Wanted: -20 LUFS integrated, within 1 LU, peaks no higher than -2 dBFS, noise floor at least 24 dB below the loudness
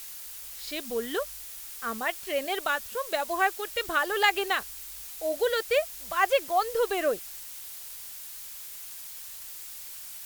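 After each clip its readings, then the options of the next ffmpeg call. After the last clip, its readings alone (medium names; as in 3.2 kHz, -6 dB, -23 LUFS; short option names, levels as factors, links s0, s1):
noise floor -42 dBFS; noise floor target -54 dBFS; loudness -30.0 LUFS; peak level -8.5 dBFS; loudness target -20.0 LUFS
-> -af "afftdn=nr=12:nf=-42"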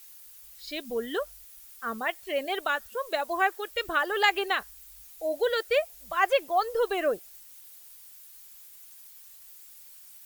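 noise floor -51 dBFS; noise floor target -53 dBFS
-> -af "afftdn=nr=6:nf=-51"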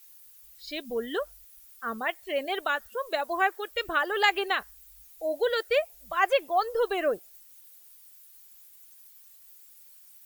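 noise floor -54 dBFS; loudness -28.5 LUFS; peak level -8.5 dBFS; loudness target -20.0 LUFS
-> -af "volume=2.66,alimiter=limit=0.794:level=0:latency=1"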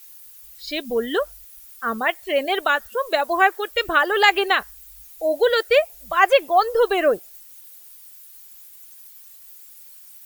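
loudness -20.0 LUFS; peak level -2.0 dBFS; noise floor -45 dBFS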